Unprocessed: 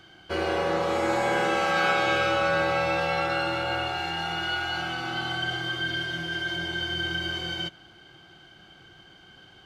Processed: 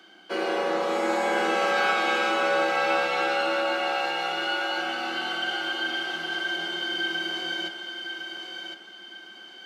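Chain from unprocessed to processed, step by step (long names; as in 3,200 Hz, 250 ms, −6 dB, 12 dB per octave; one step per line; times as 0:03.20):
Butterworth high-pass 190 Hz 72 dB per octave
feedback echo with a high-pass in the loop 1,059 ms, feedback 35%, high-pass 370 Hz, level −6 dB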